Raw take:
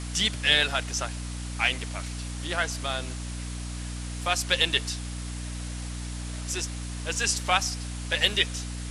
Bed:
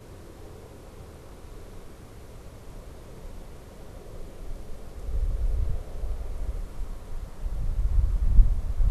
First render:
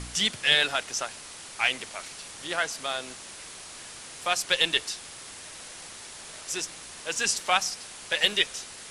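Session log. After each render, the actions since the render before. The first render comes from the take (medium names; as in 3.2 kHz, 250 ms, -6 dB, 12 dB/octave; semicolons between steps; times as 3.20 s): de-hum 60 Hz, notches 5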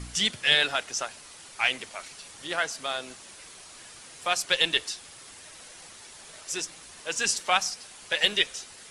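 noise reduction 6 dB, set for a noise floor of -44 dBFS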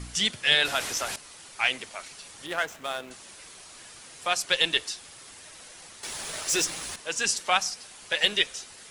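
0.65–1.16 s: one-bit delta coder 64 kbps, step -27 dBFS; 2.46–3.11 s: median filter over 9 samples; 6.03–6.96 s: waveshaping leveller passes 3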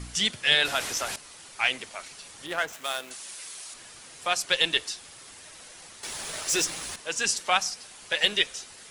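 2.73–3.74 s: tilt EQ +2.5 dB/octave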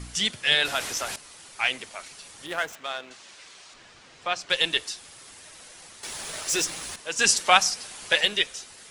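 2.75–4.50 s: distance through air 120 m; 7.19–8.21 s: gain +6 dB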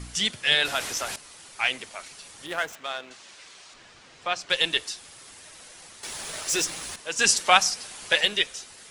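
no audible change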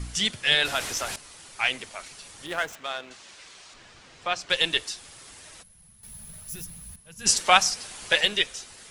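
5.63–7.26 s: time-frequency box 230–9700 Hz -20 dB; bass shelf 110 Hz +7.5 dB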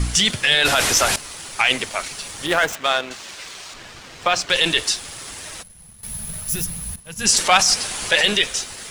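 in parallel at +2 dB: compressor with a negative ratio -28 dBFS, ratio -0.5; on the sum: waveshaping leveller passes 1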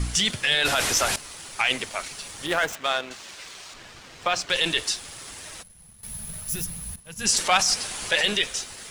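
trim -5.5 dB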